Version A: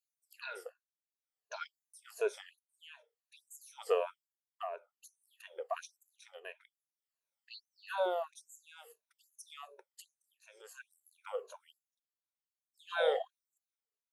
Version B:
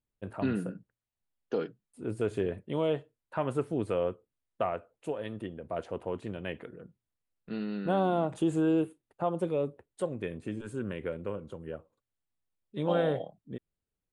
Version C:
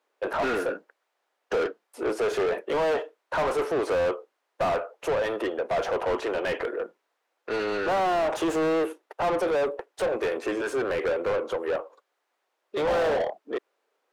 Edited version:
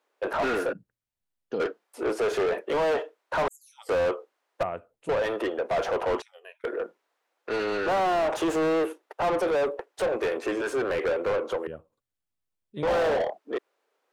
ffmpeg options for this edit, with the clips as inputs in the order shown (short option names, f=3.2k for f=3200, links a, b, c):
-filter_complex "[1:a]asplit=3[a][b][c];[0:a]asplit=2[d][e];[2:a]asplit=6[f][g][h][i][j][k];[f]atrim=end=0.732[l];[a]atrim=start=0.728:end=1.602[m];[g]atrim=start=1.598:end=3.482[n];[d]atrim=start=3.478:end=3.892[o];[h]atrim=start=3.888:end=4.632[p];[b]atrim=start=4.628:end=5.092[q];[i]atrim=start=5.088:end=6.222[r];[e]atrim=start=6.218:end=6.642[s];[j]atrim=start=6.638:end=11.672[t];[c]atrim=start=11.668:end=12.832[u];[k]atrim=start=12.828[v];[l][m]acrossfade=d=0.004:c1=hsin:c2=hsin[w];[w][n]acrossfade=d=0.004:c1=hsin:c2=hsin[x];[x][o]acrossfade=d=0.004:c1=hsin:c2=hsin[y];[y][p]acrossfade=d=0.004:c1=hsin:c2=hsin[z];[z][q]acrossfade=d=0.004:c1=hsin:c2=hsin[aa];[aa][r]acrossfade=d=0.004:c1=hsin:c2=hsin[ab];[ab][s]acrossfade=d=0.004:c1=hsin:c2=hsin[ac];[ac][t]acrossfade=d=0.004:c1=hsin:c2=hsin[ad];[ad][u]acrossfade=d=0.004:c1=hsin:c2=hsin[ae];[ae][v]acrossfade=d=0.004:c1=hsin:c2=hsin"